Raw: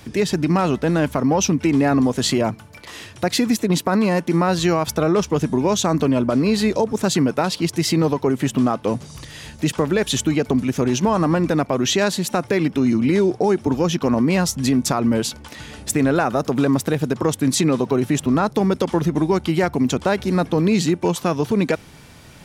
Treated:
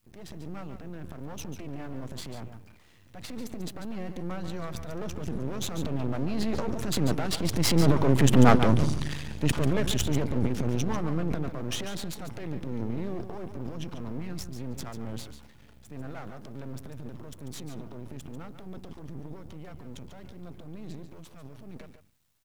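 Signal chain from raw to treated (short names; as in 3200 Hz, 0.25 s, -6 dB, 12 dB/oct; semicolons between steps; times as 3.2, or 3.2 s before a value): Doppler pass-by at 8.57, 9 m/s, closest 4.9 m; tone controls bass +10 dB, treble -6 dB; gate with hold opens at -52 dBFS; transient shaper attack -4 dB, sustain +11 dB; added noise white -72 dBFS; half-wave rectifier; on a send: echo 0.143 s -10 dB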